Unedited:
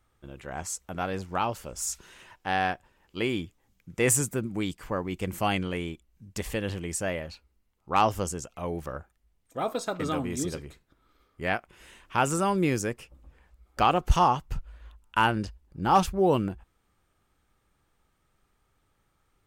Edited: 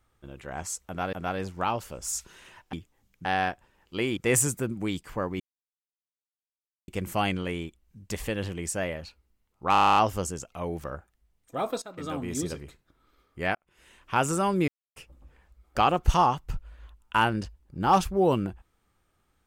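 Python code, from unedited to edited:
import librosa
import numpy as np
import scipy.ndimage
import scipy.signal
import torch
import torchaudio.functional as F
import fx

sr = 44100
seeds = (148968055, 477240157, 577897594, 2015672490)

y = fx.edit(x, sr, fx.repeat(start_s=0.87, length_s=0.26, count=2),
    fx.move(start_s=3.39, length_s=0.52, to_s=2.47),
    fx.insert_silence(at_s=5.14, length_s=1.48),
    fx.stutter(start_s=7.98, slice_s=0.03, count=9),
    fx.fade_in_from(start_s=9.84, length_s=0.53, floor_db=-16.5),
    fx.fade_in_span(start_s=11.57, length_s=0.59),
    fx.silence(start_s=12.7, length_s=0.28), tone=tone)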